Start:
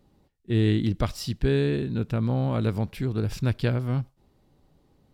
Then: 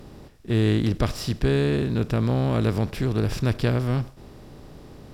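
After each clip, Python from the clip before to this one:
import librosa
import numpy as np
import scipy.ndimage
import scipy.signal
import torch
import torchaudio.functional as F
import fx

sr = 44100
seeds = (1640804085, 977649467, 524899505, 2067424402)

y = fx.bin_compress(x, sr, power=0.6)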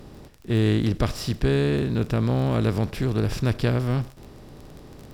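y = fx.dmg_crackle(x, sr, seeds[0], per_s=23.0, level_db=-33.0)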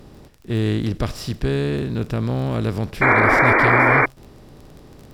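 y = fx.spec_paint(x, sr, seeds[1], shape='noise', start_s=3.01, length_s=1.05, low_hz=230.0, high_hz=2400.0, level_db=-15.0)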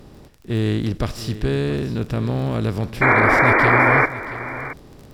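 y = x + 10.0 ** (-15.0 / 20.0) * np.pad(x, (int(674 * sr / 1000.0), 0))[:len(x)]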